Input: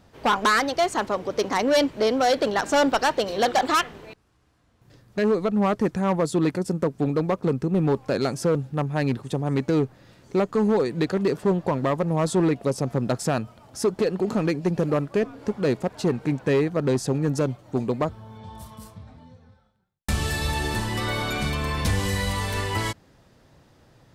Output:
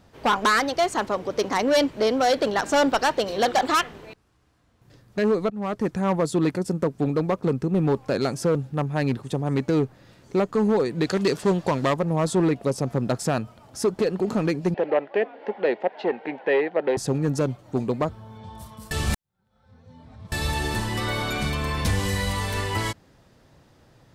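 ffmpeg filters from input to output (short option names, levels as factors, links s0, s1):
-filter_complex "[0:a]asettb=1/sr,asplit=3[s0][s1][s2];[s0]atrim=end=11.054[s3];[s1]atrim=start=11.05:end=11.94,asetpts=PTS-STARTPTS,afade=t=in:d=0.004:c=qsin,afade=t=out:st=0.886:d=0.004:c=qsin,equalizer=f=5900:t=o:w=2.8:g=10.5[s4];[s2]atrim=start=11.936[s5];[s3][s4]acrossfade=d=0.004:c1=hsin:c2=qsin[s6];[s6][s5]acrossfade=d=0.004:c1=qsin:c2=hsin,asettb=1/sr,asplit=3[s7][s8][s9];[s7]atrim=end=14.744[s10];[s8]atrim=start=14.74:end=16.97,asetpts=PTS-STARTPTS,afade=t=in:d=0.004:c=qsin,afade=t=out:st=2.226:d=0.004:c=qsin,highpass=f=280:w=0.5412,highpass=f=280:w=1.3066,equalizer=f=280:t=q:w=4:g=-7,equalizer=f=560:t=q:w=4:g=4,equalizer=f=800:t=q:w=4:g=9,equalizer=f=1200:t=q:w=4:g=-7,equalizer=f=1900:t=q:w=4:g=7,equalizer=f=2900:t=q:w=4:g=3,lowpass=f=3400:w=0.5412,lowpass=f=3400:w=1.3066[s11];[s9]atrim=start=16.966[s12];[s10][s11]acrossfade=d=0.004:c1=hsin:c2=qsin[s13];[s13][s12]acrossfade=d=0.004:c1=qsin:c2=hsin,asplit=4[s14][s15][s16][s17];[s14]atrim=end=5.5,asetpts=PTS-STARTPTS,afade=t=out:st=5.496:d=0.004:c=hsin:silence=0.149624[s18];[s15]atrim=start=5.5:end=18.912,asetpts=PTS-STARTPTS,afade=t=in:d=0.64:c=qsin:silence=0.149624[s19];[s16]atrim=start=18.908:end=20.322,asetpts=PTS-STARTPTS,areverse[s20];[s17]atrim=start=20.318[s21];[s18][s19]concat=n=2:v=0:a=1[s22];[s22][s20]acrossfade=d=0.004:c1=hsin:c2=hsin[s23];[s23][s21]acrossfade=d=0.004:c1=hsin:c2=hsin"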